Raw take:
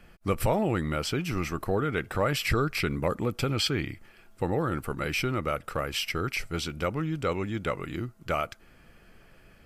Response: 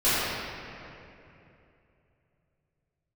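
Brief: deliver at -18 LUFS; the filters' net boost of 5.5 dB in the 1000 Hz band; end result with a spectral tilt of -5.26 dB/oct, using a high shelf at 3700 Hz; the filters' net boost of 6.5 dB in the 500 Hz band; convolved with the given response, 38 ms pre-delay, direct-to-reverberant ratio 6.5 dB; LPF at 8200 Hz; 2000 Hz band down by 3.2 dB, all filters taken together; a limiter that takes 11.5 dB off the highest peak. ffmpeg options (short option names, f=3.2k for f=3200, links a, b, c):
-filter_complex "[0:a]lowpass=8.2k,equalizer=f=500:t=o:g=6,equalizer=f=1k:t=o:g=8.5,equalizer=f=2k:t=o:g=-9,highshelf=f=3.7k:g=4,alimiter=limit=-19dB:level=0:latency=1,asplit=2[a][b];[1:a]atrim=start_sample=2205,adelay=38[c];[b][c]afir=irnorm=-1:irlink=0,volume=-24dB[d];[a][d]amix=inputs=2:normalize=0,volume=11dB"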